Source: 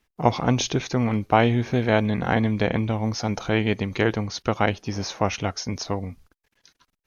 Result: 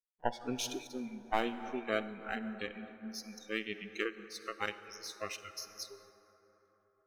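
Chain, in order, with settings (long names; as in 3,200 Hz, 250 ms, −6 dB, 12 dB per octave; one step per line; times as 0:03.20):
gain on one half-wave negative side −12 dB
noise reduction from a noise print of the clip's start 30 dB
parametric band 94 Hz −15 dB 1.5 octaves
convolution reverb RT60 4.1 s, pre-delay 43 ms, DRR 10.5 dB
amplitude modulation by smooth noise, depth 60%
level −4.5 dB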